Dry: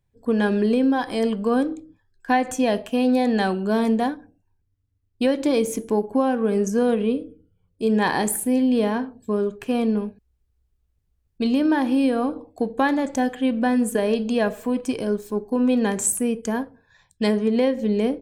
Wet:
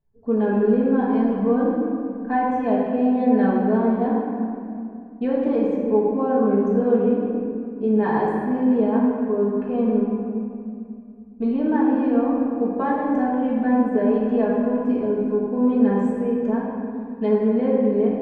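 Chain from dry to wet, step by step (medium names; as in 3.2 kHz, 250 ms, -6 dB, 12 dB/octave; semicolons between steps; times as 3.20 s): low-pass 1.2 kHz 12 dB/octave; reverberation RT60 2.5 s, pre-delay 4 ms, DRR -6.5 dB; trim -6 dB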